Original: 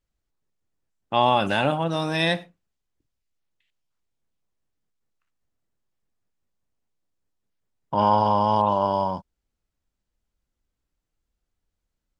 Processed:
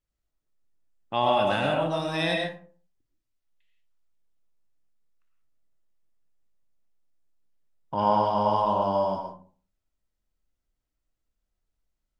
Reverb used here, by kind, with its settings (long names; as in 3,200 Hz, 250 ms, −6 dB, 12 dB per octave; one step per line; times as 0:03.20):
comb and all-pass reverb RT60 0.44 s, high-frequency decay 0.5×, pre-delay 65 ms, DRR 1 dB
level −5.5 dB